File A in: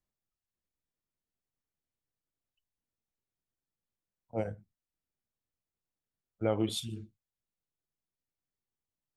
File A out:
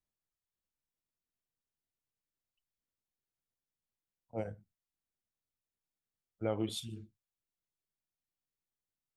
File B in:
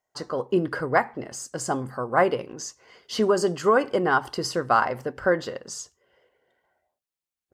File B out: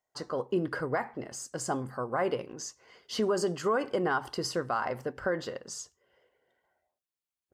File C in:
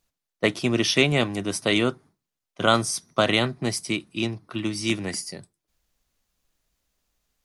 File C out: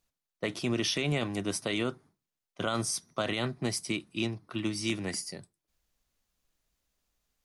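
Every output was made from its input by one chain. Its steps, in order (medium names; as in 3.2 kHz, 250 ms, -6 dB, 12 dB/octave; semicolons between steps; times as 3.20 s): peak limiter -15 dBFS; trim -4.5 dB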